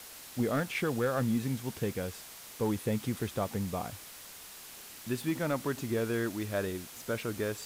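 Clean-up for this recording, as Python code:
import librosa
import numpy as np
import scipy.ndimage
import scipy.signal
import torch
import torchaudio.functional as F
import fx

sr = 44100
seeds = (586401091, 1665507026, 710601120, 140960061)

y = fx.fix_declip(x, sr, threshold_db=-22.0)
y = fx.noise_reduce(y, sr, print_start_s=4.11, print_end_s=4.61, reduce_db=30.0)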